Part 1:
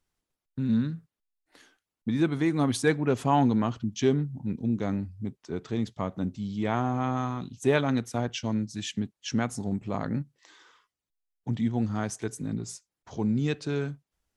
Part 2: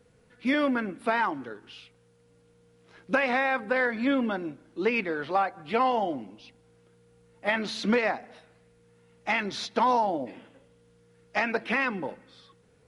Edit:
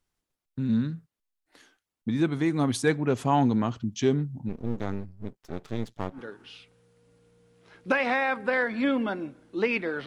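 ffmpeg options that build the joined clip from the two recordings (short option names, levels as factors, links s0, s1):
-filter_complex "[0:a]asplit=3[s0][s1][s2];[s0]afade=t=out:st=4.48:d=0.02[s3];[s1]aeval=exprs='max(val(0),0)':c=same,afade=t=in:st=4.48:d=0.02,afade=t=out:st=6.21:d=0.02[s4];[s2]afade=t=in:st=6.21:d=0.02[s5];[s3][s4][s5]amix=inputs=3:normalize=0,apad=whole_dur=10.06,atrim=end=10.06,atrim=end=6.21,asetpts=PTS-STARTPTS[s6];[1:a]atrim=start=1.34:end=5.29,asetpts=PTS-STARTPTS[s7];[s6][s7]acrossfade=d=0.1:c1=tri:c2=tri"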